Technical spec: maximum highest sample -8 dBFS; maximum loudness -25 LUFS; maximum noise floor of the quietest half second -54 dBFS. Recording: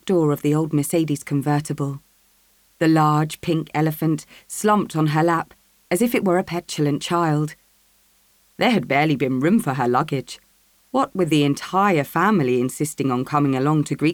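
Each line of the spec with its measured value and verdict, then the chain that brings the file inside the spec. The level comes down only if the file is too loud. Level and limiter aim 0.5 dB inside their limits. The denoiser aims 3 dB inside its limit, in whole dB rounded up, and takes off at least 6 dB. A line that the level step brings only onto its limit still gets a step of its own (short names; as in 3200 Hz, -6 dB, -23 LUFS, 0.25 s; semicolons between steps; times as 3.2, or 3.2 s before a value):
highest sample -5.5 dBFS: fail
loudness -20.5 LUFS: fail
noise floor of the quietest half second -59 dBFS: OK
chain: gain -5 dB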